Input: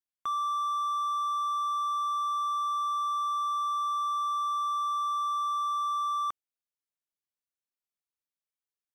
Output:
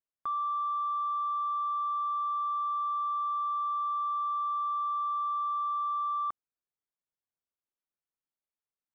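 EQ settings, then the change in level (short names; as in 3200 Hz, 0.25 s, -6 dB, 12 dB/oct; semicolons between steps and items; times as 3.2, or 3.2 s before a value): LPF 1500 Hz 12 dB/oct; 0.0 dB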